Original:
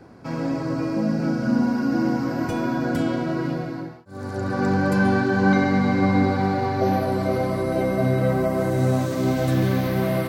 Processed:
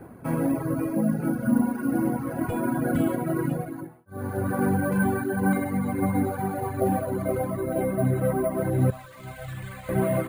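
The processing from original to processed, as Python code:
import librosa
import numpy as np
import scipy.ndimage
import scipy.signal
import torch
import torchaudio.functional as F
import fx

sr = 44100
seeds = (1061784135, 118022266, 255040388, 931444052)

y = fx.dereverb_blind(x, sr, rt60_s=1.5)
y = fx.tone_stack(y, sr, knobs='10-0-10', at=(8.9, 9.89))
y = fx.rider(y, sr, range_db=5, speed_s=2.0)
y = fx.air_absorb(y, sr, metres=400.0)
y = np.repeat(y[::4], 4)[:len(y)]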